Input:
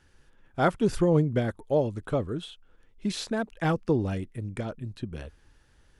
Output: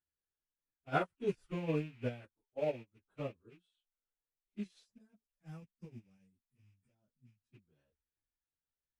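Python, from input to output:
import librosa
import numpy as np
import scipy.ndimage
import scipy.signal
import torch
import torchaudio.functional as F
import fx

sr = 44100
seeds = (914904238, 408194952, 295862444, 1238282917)

y = fx.rattle_buzz(x, sr, strikes_db=-33.0, level_db=-26.0)
y = fx.spec_box(y, sr, start_s=3.23, length_s=1.8, low_hz=270.0, high_hz=4700.0, gain_db=-12)
y = fx.stretch_vocoder_free(y, sr, factor=1.5)
y = fx.low_shelf(y, sr, hz=72.0, db=-5.0)
y = fx.upward_expand(y, sr, threshold_db=-41.0, expansion=2.5)
y = y * librosa.db_to_amplitude(-5.0)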